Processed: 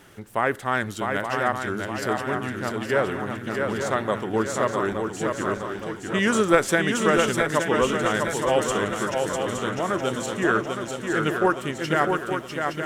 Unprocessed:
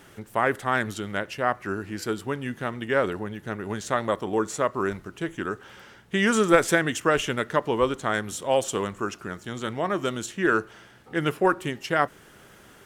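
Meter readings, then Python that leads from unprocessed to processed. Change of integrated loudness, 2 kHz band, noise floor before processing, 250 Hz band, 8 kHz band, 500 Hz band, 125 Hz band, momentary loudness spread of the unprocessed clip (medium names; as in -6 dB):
+2.0 dB, +2.0 dB, -52 dBFS, +2.0 dB, +2.5 dB, +2.0 dB, +2.5 dB, 10 LU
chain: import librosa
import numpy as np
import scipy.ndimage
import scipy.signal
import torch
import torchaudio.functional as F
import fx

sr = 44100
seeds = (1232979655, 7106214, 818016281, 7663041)

y = fx.wow_flutter(x, sr, seeds[0], rate_hz=2.1, depth_cents=15.0)
y = fx.echo_swing(y, sr, ms=868, ratio=3, feedback_pct=50, wet_db=-4.5)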